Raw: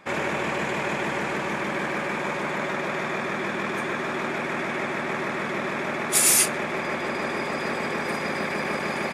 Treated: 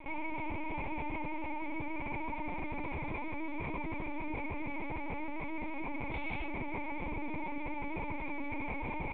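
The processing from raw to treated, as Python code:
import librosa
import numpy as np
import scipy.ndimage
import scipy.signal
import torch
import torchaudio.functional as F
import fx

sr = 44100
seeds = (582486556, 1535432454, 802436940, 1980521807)

y = fx.vowel_filter(x, sr, vowel='u')
y = fx.echo_tape(y, sr, ms=77, feedback_pct=90, wet_db=-15.0, lp_hz=1300.0, drive_db=30.0, wow_cents=15)
y = fx.lpc_vocoder(y, sr, seeds[0], excitation='pitch_kept', order=10)
y = fx.env_flatten(y, sr, amount_pct=50)
y = y * 10.0 ** (1.5 / 20.0)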